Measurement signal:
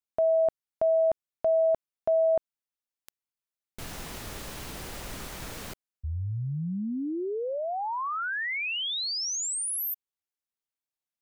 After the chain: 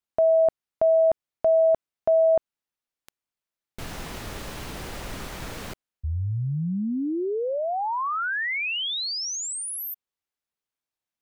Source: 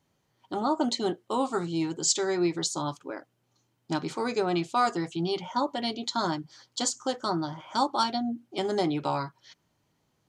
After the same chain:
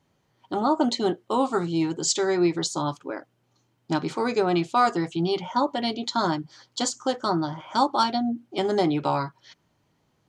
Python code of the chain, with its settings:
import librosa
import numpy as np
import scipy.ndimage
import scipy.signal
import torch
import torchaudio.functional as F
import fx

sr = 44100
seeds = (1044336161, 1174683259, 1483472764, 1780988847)

y = fx.high_shelf(x, sr, hz=5400.0, db=-7.0)
y = y * 10.0 ** (4.5 / 20.0)